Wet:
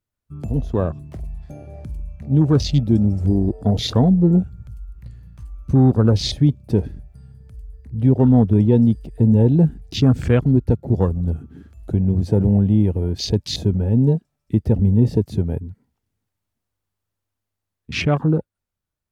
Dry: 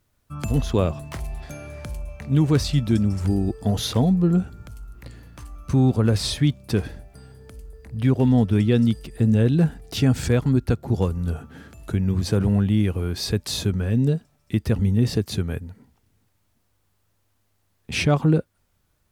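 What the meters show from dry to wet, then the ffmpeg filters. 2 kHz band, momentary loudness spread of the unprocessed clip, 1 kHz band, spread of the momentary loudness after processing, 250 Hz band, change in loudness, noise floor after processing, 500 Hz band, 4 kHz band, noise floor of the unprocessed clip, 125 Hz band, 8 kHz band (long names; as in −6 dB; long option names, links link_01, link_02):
−1.5 dB, 16 LU, +2.0 dB, 19 LU, +4.0 dB, +3.5 dB, −82 dBFS, +3.5 dB, +1.0 dB, −68 dBFS, +4.0 dB, can't be measured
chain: -af "afwtdn=0.0282,dynaudnorm=framelen=350:gausssize=11:maxgain=5dB"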